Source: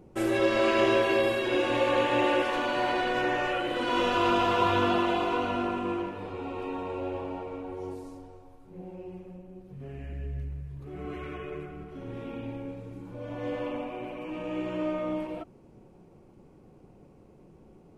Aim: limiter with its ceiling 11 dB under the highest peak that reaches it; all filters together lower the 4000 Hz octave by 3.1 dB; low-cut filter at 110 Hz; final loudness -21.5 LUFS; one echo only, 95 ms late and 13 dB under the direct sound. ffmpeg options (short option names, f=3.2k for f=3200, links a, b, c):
-af "highpass=110,equalizer=f=4k:t=o:g=-4.5,alimiter=limit=-23.5dB:level=0:latency=1,aecho=1:1:95:0.224,volume=12.5dB"